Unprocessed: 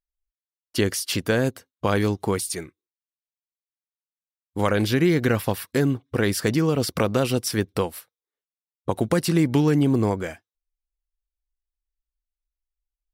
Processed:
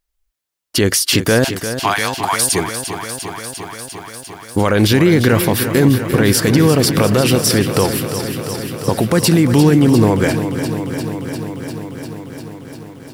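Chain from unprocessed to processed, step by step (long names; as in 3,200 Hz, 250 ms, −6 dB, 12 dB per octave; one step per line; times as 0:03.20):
0:01.44–0:02.42: Chebyshev high-pass filter 680 Hz, order 6
boost into a limiter +18 dB
feedback echo at a low word length 349 ms, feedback 80%, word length 7 bits, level −10 dB
level −3.5 dB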